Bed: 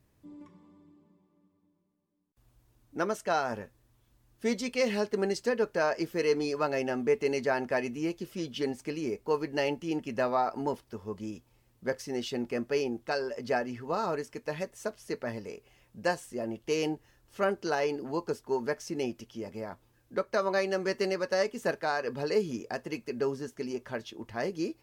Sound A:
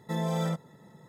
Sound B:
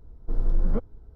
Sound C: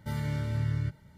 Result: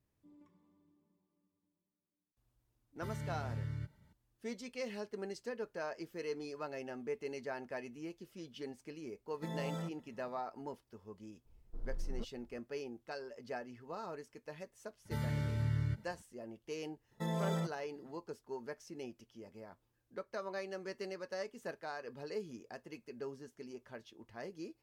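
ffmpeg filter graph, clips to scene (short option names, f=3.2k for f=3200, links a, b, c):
-filter_complex "[3:a]asplit=2[a][b];[1:a]asplit=2[c][d];[0:a]volume=-13.5dB[e];[d]agate=range=-8dB:threshold=-47dB:ratio=16:release=100:detection=peak[f];[a]atrim=end=1.17,asetpts=PTS-STARTPTS,volume=-10.5dB,afade=t=in:d=0.004:c=hsin,afade=t=out:st=1.166:d=0.004:c=hsin,adelay=2960[g];[c]atrim=end=1.08,asetpts=PTS-STARTPTS,volume=-11.5dB,afade=t=in:d=0.004:c=hsin,afade=t=out:st=1.076:d=0.004:c=hsin,adelay=9330[h];[2:a]atrim=end=1.15,asetpts=PTS-STARTPTS,volume=-18dB,afade=t=in:d=0.004:c=hsin,afade=t=out:st=1.146:d=0.004:c=hsin,adelay=11450[i];[b]atrim=end=1.17,asetpts=PTS-STARTPTS,volume=-4.5dB,afade=t=in:d=0.004:c=hsin,afade=t=out:st=1.166:d=0.004:c=hsin,adelay=15050[j];[f]atrim=end=1.08,asetpts=PTS-STARTPTS,volume=-6.5dB,afade=t=in:d=0.004:c=hsin,afade=t=out:st=1.076:d=0.004:c=hsin,adelay=17110[k];[e][g][h][i][j][k]amix=inputs=6:normalize=0"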